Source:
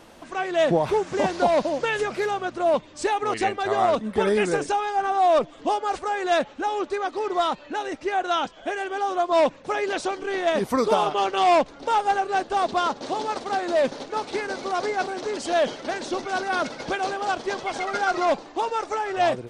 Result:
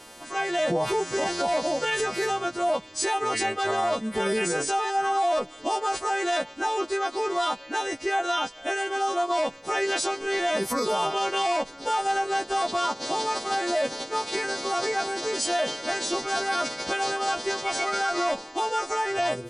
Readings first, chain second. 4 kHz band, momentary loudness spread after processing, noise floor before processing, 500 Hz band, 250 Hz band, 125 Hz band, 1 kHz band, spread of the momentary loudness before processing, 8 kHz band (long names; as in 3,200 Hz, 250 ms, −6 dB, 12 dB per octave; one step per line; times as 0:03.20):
+3.5 dB, 3 LU, −46 dBFS, −4.0 dB, −3.5 dB, −4.5 dB, −2.5 dB, 7 LU, +7.5 dB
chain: every partial snapped to a pitch grid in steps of 2 semitones
brickwall limiter −17 dBFS, peak gain reduction 9.5 dB